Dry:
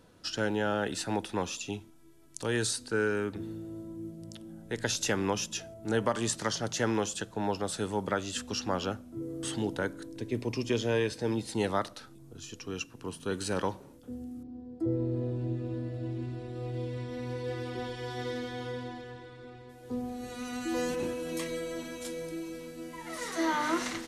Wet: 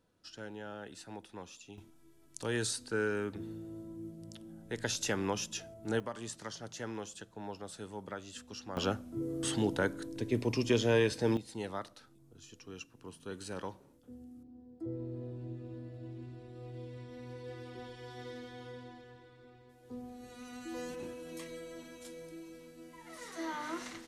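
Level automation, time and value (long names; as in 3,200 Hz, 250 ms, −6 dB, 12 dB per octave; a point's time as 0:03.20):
−15 dB
from 0:01.78 −4 dB
from 0:06.00 −12 dB
from 0:08.77 +1 dB
from 0:11.37 −10 dB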